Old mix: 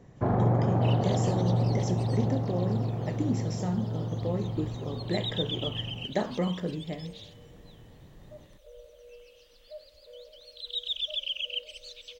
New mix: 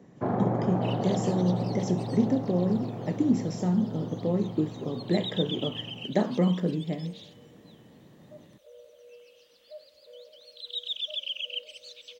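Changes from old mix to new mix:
speech: add low-shelf EQ 400 Hz +9 dB
master: add Chebyshev high-pass filter 190 Hz, order 2

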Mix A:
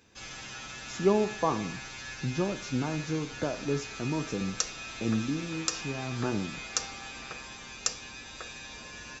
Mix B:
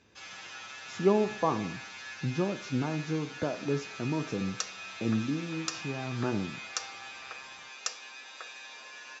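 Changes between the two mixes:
background: add high-pass filter 630 Hz 12 dB per octave
master: add high-frequency loss of the air 82 metres

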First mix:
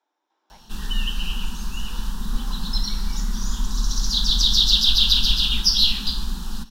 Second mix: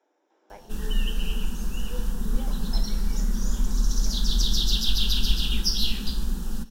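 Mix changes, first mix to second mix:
speech +9.0 dB
master: add octave-band graphic EQ 500/1,000/4,000 Hz +8/−9/−11 dB

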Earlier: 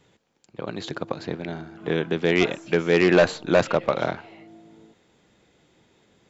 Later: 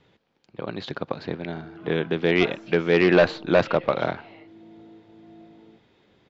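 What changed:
background: entry +0.85 s
master: add low-pass filter 4,800 Hz 24 dB per octave

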